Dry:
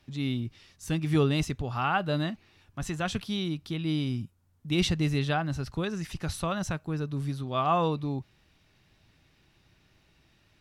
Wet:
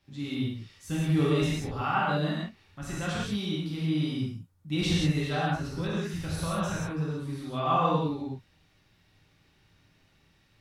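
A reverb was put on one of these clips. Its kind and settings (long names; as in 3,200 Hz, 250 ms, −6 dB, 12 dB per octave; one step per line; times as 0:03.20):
reverb whose tail is shaped and stops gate 210 ms flat, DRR −8 dB
level −8.5 dB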